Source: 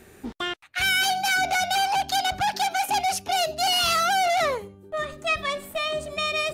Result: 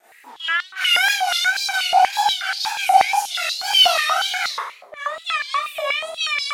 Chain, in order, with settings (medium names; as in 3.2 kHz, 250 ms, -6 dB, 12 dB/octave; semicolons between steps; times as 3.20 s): Schroeder reverb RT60 0.63 s, combs from 25 ms, DRR -10 dB; wow and flutter 130 cents; step-sequenced high-pass 8.3 Hz 720–4400 Hz; trim -9.5 dB